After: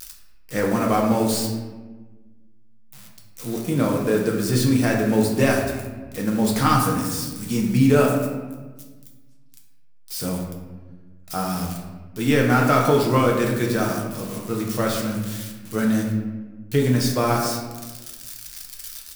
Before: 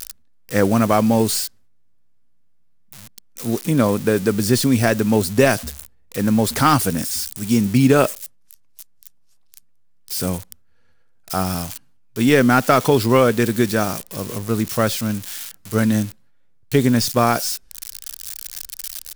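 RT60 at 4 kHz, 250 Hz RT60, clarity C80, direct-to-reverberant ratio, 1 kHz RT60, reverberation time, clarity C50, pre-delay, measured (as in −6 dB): 0.75 s, 1.8 s, 6.0 dB, −1.5 dB, 1.2 s, 1.3 s, 3.5 dB, 6 ms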